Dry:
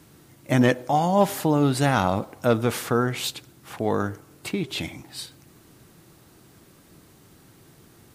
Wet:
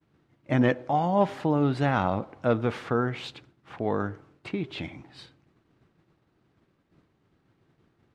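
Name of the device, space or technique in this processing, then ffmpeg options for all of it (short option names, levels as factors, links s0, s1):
hearing-loss simulation: -af "lowpass=2800,agate=range=0.0224:threshold=0.00562:ratio=3:detection=peak,volume=0.668"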